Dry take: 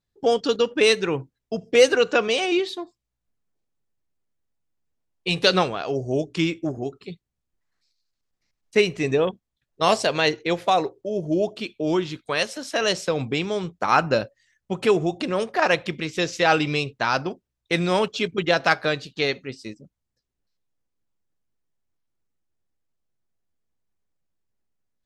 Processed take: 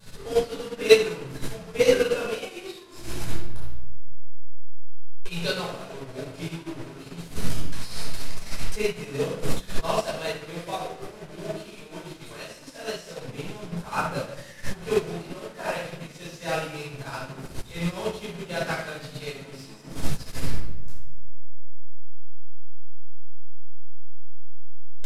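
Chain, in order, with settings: delta modulation 64 kbps, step -20 dBFS; shoebox room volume 620 m³, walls mixed, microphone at 5.2 m; upward expander 2.5:1, over -16 dBFS; gain -9 dB

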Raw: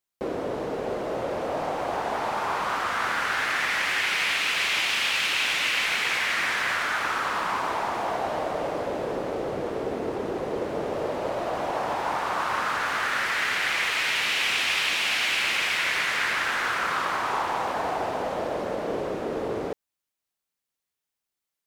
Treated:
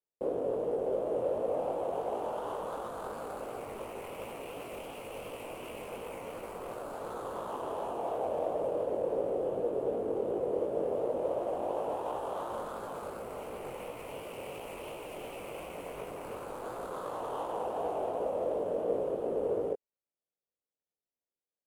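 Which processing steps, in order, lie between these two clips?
median filter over 25 samples; band shelf 5300 Hz -11.5 dB 1.3 oct; chorus 2.8 Hz, delay 16.5 ms, depth 7.1 ms; graphic EQ 500/2000/8000 Hz +11/-9/+8 dB; gain -6.5 dB; MP3 80 kbps 48000 Hz

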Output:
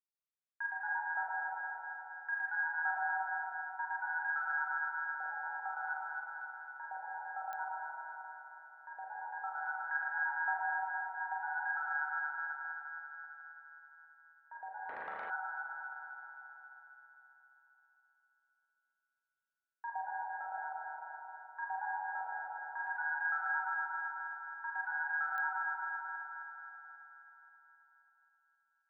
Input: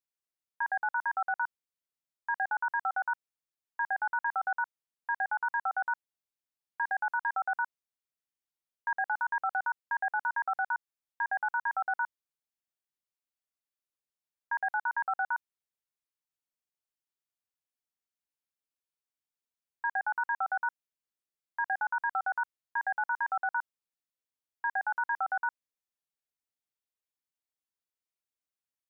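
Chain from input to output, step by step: notch 1000 Hz, Q 11; transient shaper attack +3 dB, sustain -11 dB; LFO band-pass sine 0.53 Hz 520–1600 Hz; thinning echo 0.266 s, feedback 67%, high-pass 450 Hz, level -4 dB; spring tank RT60 3 s, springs 34/39 ms, chirp 75 ms, DRR -4 dB; pops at 7.53/25.38, -22 dBFS; 14.89–15.3 spectral compressor 4:1; gain -8 dB

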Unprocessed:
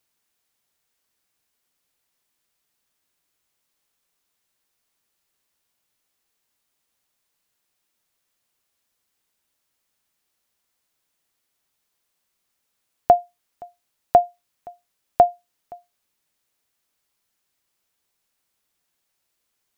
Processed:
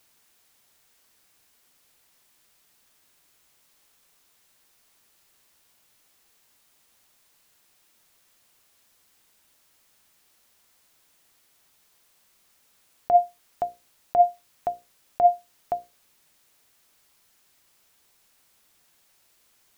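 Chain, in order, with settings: negative-ratio compressor -22 dBFS, ratio -1; notches 60/120/180/240/300/360/420/480/540 Hz; gain +5 dB

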